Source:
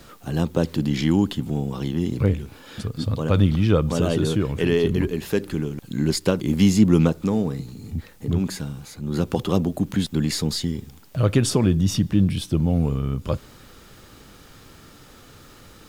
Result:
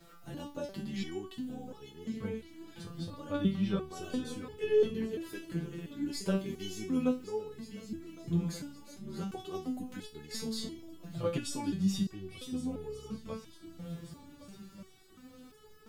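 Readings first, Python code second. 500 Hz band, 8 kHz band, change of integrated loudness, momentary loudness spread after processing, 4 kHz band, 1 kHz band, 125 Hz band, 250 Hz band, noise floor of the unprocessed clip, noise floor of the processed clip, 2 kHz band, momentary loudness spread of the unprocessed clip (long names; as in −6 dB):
−10.5 dB, −13.5 dB, −14.0 dB, 17 LU, −13.0 dB, −12.5 dB, −18.5 dB, −13.5 dB, −48 dBFS, −57 dBFS, −13.5 dB, 11 LU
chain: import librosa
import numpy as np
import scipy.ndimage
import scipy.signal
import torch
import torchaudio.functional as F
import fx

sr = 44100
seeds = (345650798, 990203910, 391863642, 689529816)

y = fx.echo_swing(x, sr, ms=1482, ratio=3, feedback_pct=42, wet_db=-15)
y = fx.resonator_held(y, sr, hz=2.9, low_hz=170.0, high_hz=430.0)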